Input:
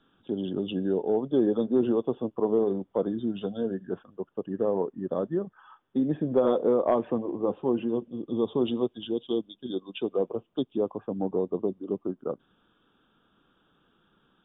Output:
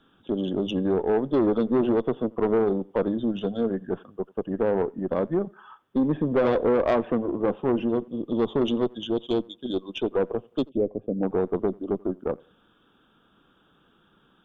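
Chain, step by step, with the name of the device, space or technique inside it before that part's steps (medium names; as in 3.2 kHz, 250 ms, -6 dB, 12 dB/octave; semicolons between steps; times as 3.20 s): rockabilly slapback (valve stage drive 22 dB, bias 0.4; tape echo 87 ms, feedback 32%, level -24 dB, low-pass 1.7 kHz); 10.69–11.23 s: FFT filter 600 Hz 0 dB, 930 Hz -24 dB, 1.6 kHz -25 dB, 2.2 kHz -14 dB; trim +6 dB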